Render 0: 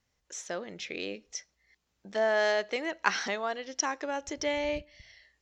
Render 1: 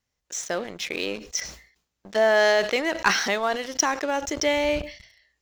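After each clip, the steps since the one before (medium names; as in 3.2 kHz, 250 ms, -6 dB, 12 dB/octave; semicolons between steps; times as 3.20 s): treble shelf 5.5 kHz +4 dB; waveshaping leveller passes 2; decay stretcher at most 110 dB/s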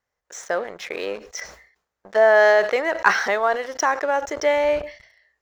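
high-order bell 900 Hz +11 dB 2.6 oct; trim -6 dB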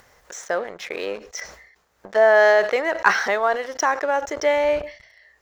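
upward compressor, threshold -34 dBFS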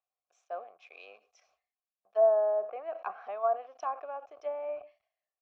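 low-pass that closes with the level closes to 770 Hz, closed at -13 dBFS; vowel filter a; three bands expanded up and down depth 70%; trim -6 dB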